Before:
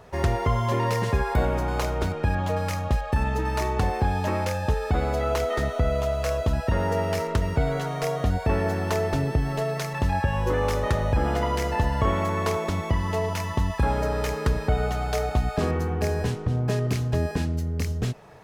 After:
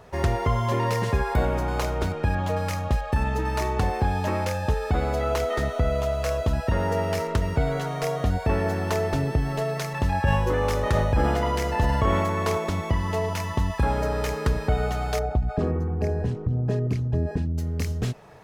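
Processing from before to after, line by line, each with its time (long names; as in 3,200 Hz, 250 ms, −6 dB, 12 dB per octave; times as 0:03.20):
0:10.24–0:12.58: level that may fall only so fast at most 24 dB per second
0:15.19–0:17.58: spectral envelope exaggerated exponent 1.5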